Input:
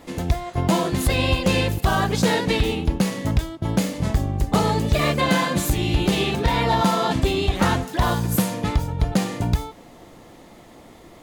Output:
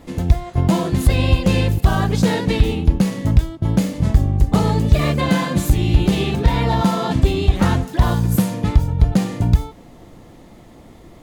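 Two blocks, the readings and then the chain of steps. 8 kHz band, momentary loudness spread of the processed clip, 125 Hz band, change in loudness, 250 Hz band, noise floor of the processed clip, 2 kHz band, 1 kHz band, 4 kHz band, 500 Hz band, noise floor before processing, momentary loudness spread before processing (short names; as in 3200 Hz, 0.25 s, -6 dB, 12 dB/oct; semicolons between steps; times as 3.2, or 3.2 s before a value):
-2.0 dB, 2 LU, +6.5 dB, +4.0 dB, +4.0 dB, -43 dBFS, -2.0 dB, -1.0 dB, -2.0 dB, +0.5 dB, -46 dBFS, 5 LU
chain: low shelf 250 Hz +10.5 dB; gain -2 dB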